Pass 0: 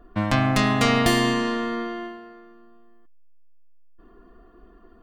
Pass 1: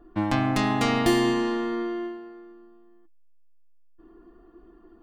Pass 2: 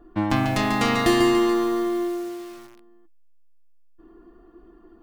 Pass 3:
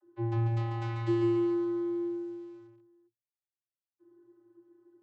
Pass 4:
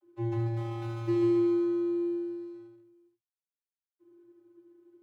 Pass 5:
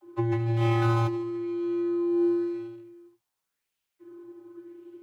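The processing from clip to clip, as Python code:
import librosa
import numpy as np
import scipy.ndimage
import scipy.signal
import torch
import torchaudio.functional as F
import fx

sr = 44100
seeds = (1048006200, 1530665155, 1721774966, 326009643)

y1 = fx.small_body(x, sr, hz=(330.0, 840.0), ring_ms=75, db=14)
y1 = y1 * 10.0 ** (-5.5 / 20.0)
y2 = fx.echo_crushed(y1, sr, ms=143, feedback_pct=55, bits=7, wet_db=-6)
y2 = y2 * 10.0 ** (2.0 / 20.0)
y3 = fx.vocoder(y2, sr, bands=32, carrier='square', carrier_hz=115.0)
y3 = y3 * 10.0 ** (-8.0 / 20.0)
y4 = scipy.ndimage.median_filter(y3, 25, mode='constant')
y4 = y4 + 10.0 ** (-6.5 / 20.0) * np.pad(y4, (int(75 * sr / 1000.0), 0))[:len(y4)]
y5 = fx.over_compress(y4, sr, threshold_db=-34.0, ratio=-1.0)
y5 = fx.bell_lfo(y5, sr, hz=0.92, low_hz=850.0, high_hz=2900.0, db=8)
y5 = y5 * 10.0 ** (7.5 / 20.0)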